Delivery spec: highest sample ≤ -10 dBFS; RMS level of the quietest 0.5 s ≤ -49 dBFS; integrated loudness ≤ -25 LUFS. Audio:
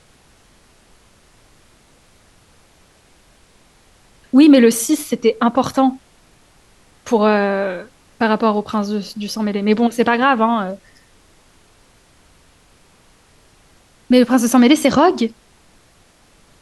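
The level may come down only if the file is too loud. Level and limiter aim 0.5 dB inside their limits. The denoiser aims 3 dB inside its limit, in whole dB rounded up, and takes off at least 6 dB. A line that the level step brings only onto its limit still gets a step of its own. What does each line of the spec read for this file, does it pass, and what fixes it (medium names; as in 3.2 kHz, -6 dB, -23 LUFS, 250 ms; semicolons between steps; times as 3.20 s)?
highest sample -2.0 dBFS: fail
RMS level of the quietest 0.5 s -52 dBFS: pass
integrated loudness -15.5 LUFS: fail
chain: trim -10 dB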